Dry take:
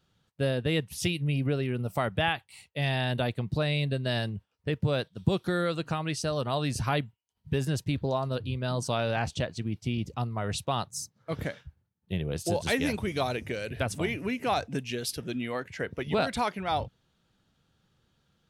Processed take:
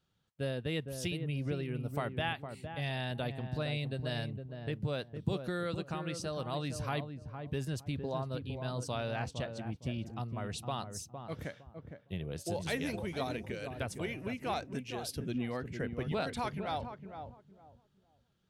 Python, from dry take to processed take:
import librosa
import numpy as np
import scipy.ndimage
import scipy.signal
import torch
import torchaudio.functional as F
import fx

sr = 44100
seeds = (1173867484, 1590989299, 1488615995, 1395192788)

y = fx.low_shelf(x, sr, hz=250.0, db=12.0, at=(15.15, 16.12))
y = fx.echo_filtered(y, sr, ms=460, feedback_pct=27, hz=830.0, wet_db=-6.0)
y = y * librosa.db_to_amplitude(-8.0)